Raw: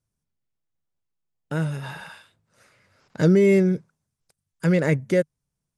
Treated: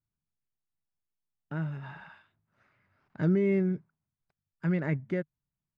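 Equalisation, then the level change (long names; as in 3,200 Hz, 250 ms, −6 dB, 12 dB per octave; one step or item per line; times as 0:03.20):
low-pass filter 2,100 Hz 12 dB per octave
parametric band 500 Hz −12.5 dB 0.34 octaves
−7.5 dB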